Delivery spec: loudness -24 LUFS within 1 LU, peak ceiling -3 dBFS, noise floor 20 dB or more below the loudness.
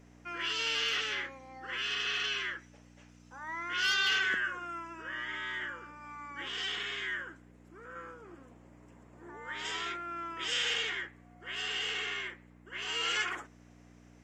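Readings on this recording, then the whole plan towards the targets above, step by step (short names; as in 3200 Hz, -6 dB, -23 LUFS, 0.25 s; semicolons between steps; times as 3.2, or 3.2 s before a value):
hum 60 Hz; harmonics up to 300 Hz; hum level -55 dBFS; loudness -33.5 LUFS; peak -18.5 dBFS; loudness target -24.0 LUFS
-> de-hum 60 Hz, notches 5; gain +9.5 dB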